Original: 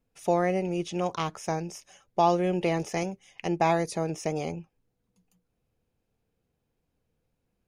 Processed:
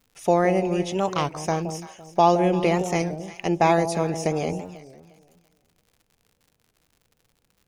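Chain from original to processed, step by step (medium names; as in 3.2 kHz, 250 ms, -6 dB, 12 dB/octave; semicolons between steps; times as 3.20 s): echo whose repeats swap between lows and highs 169 ms, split 830 Hz, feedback 51%, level -8.5 dB; crackle 100 per s -51 dBFS; warped record 33 1/3 rpm, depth 160 cents; trim +5 dB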